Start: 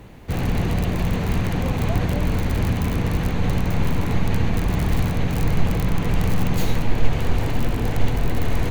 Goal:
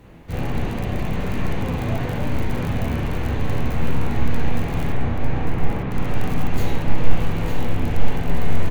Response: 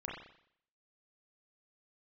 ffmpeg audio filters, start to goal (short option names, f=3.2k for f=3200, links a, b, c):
-filter_complex "[0:a]asettb=1/sr,asplit=3[a][b][c];[a]atrim=end=4.924[d];[b]atrim=start=4.92:end=5.91,asetpts=PTS-STARTPTS,afade=t=in:d=0.004:c=qsin,afade=t=out:st=0.986:d=0.004:c=qsin,lowpass=2.3k[e];[c]atrim=start=5.906[f];[d][e]acrossfade=d=0.004:c1=hsin:c2=qsin[g];[g][f]acrossfade=d=0.004:c1=qsin:c2=hsin,aecho=1:1:900:0.473[h];[1:a]atrim=start_sample=2205,atrim=end_sample=3969[i];[h][i]afir=irnorm=-1:irlink=0,volume=-1.5dB"